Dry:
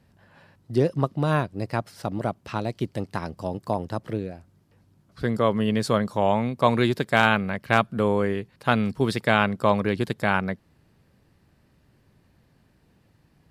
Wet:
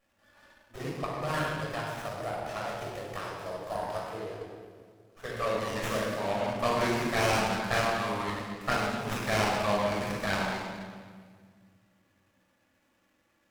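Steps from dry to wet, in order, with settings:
high-pass filter 1,100 Hz 6 dB per octave
high-shelf EQ 4,700 Hz +12 dB
flanger swept by the level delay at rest 3.6 ms, full sweep at −20.5 dBFS
rectangular room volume 2,800 cubic metres, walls mixed, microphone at 6.1 metres
windowed peak hold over 9 samples
level −5.5 dB

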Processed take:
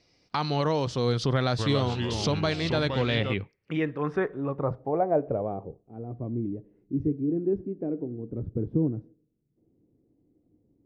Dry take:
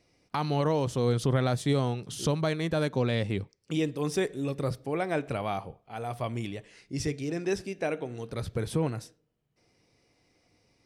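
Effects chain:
dynamic equaliser 1,300 Hz, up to +3 dB, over −45 dBFS, Q 1.2
low-pass filter sweep 4,800 Hz → 310 Hz, 0:02.65–0:06.01
0:01.33–0:03.34: delay with pitch and tempo change per echo 257 ms, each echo −3 semitones, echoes 3, each echo −6 dB

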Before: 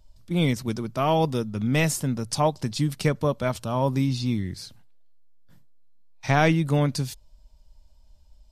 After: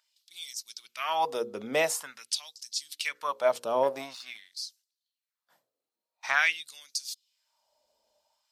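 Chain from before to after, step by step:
mains-hum notches 60/120/180/240/300/360/420/480/540 Hz
0:03.83–0:04.57: power curve on the samples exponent 1.4
auto-filter high-pass sine 0.47 Hz 450–5,600 Hz
level −3 dB

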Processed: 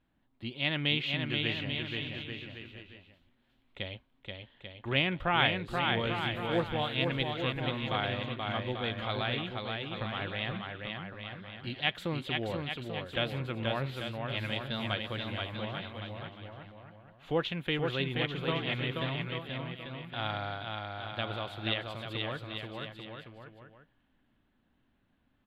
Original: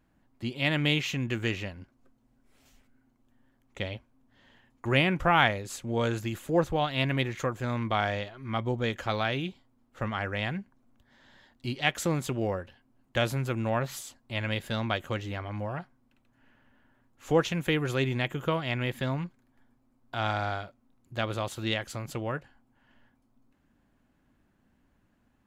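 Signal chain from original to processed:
tape wow and flutter 26 cents
high shelf with overshoot 4,800 Hz −10.5 dB, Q 3
bouncing-ball delay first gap 480 ms, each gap 0.75×, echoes 5
level −6.5 dB

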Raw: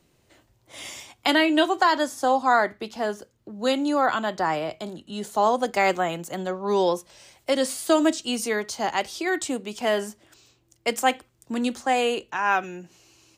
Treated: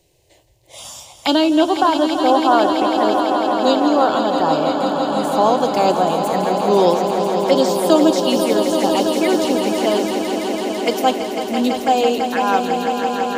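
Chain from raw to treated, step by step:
0:01.51–0:02.98: Savitzky-Golay smoothing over 25 samples
phaser swept by the level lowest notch 220 Hz, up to 2,000 Hz, full sweep at −22 dBFS
echo that builds up and dies away 166 ms, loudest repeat 5, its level −9 dB
level +7 dB

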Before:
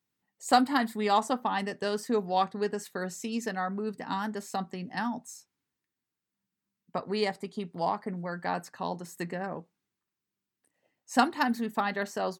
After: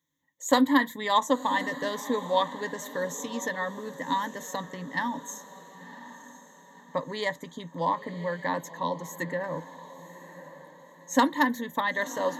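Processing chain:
EQ curve with evenly spaced ripples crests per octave 1.1, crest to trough 17 dB
feedback delay with all-pass diffusion 1,039 ms, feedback 42%, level −14 dB

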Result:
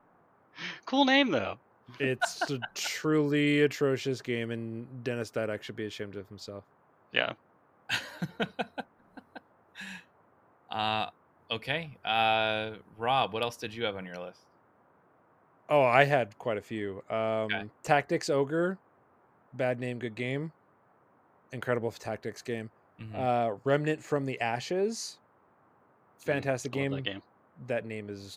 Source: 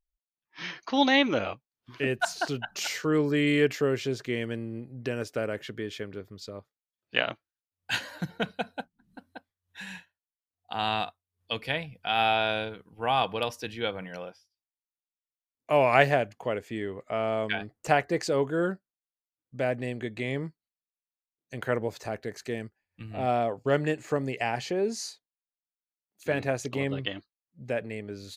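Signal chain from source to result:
noise in a band 90–1,300 Hz −63 dBFS
level −1.5 dB

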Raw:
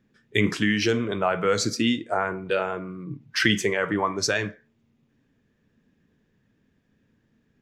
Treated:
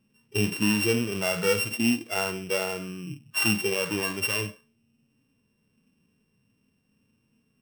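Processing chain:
samples sorted by size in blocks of 16 samples
harmonic and percussive parts rebalanced percussive −18 dB

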